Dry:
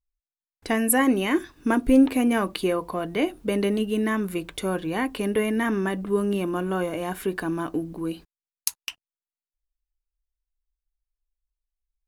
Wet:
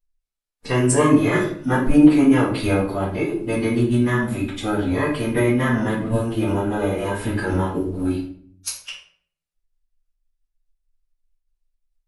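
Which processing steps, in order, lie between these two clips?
formant-preserving pitch shift -10 st; reverb RT60 0.50 s, pre-delay 4 ms, DRR -3.5 dB

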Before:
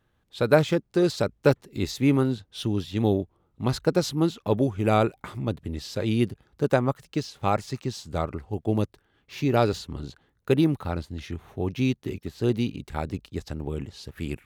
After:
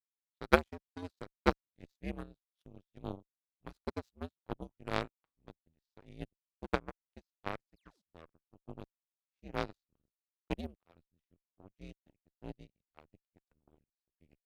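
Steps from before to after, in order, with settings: painted sound fall, 7.76–8.02, 230–5400 Hz -32 dBFS; frequency shift -84 Hz; added harmonics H 3 -8 dB, 5 -26 dB, 7 -42 dB, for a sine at -4 dBFS; gain -1 dB

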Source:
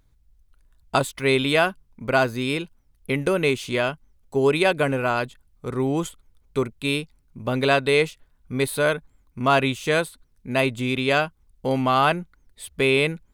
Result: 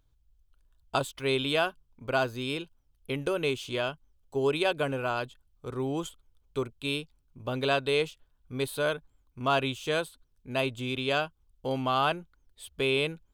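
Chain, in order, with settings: thirty-one-band EQ 200 Hz -12 dB, 2000 Hz -8 dB, 3150 Hz +5 dB, 10000 Hz -4 dB; gain -7 dB

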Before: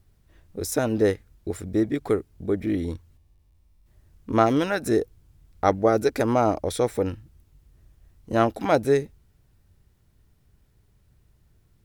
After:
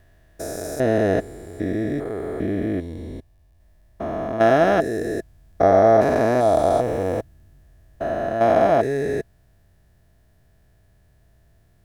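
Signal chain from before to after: stepped spectrum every 0.4 s; small resonant body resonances 660/1700 Hz, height 14 dB, ringing for 35 ms; gain +4.5 dB

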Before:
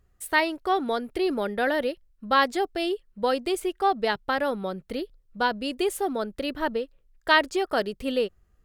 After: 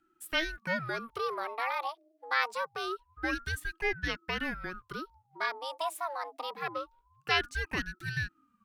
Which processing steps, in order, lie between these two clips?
frequency shift +450 Hz; ring modulator with a swept carrier 490 Hz, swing 70%, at 0.25 Hz; gain -5.5 dB

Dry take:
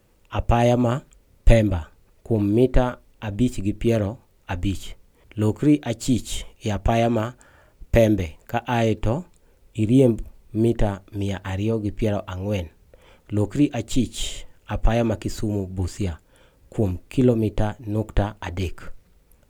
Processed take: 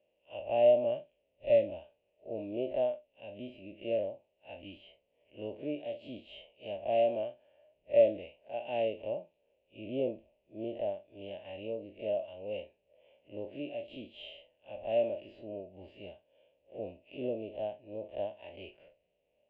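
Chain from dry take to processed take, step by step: time blur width 82 ms; double band-pass 1300 Hz, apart 2.2 oct; air absorption 440 m; gain +2 dB

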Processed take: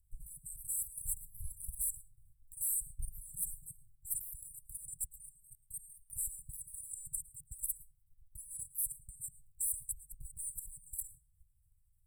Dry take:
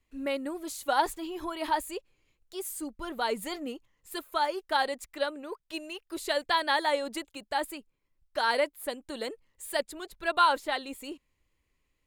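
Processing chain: level quantiser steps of 12 dB; brick-wall FIR band-stop 150–7600 Hz; reverb RT60 0.40 s, pre-delay 0.104 s, DRR 16.5 dB; gain +14.5 dB

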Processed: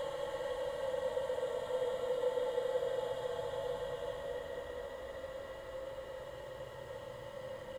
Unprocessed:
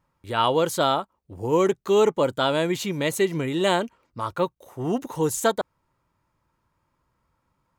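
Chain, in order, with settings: self-modulated delay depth 0.099 ms; spectral repair 5.59–6.54, 480–12000 Hz before; small resonant body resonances 520/1900/2900 Hz, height 18 dB, ringing for 25 ms; on a send: feedback echo 0.221 s, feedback 37%, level -6 dB; on the sum: Paulstretch 31×, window 0.10 s, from 6.88; gain +15.5 dB

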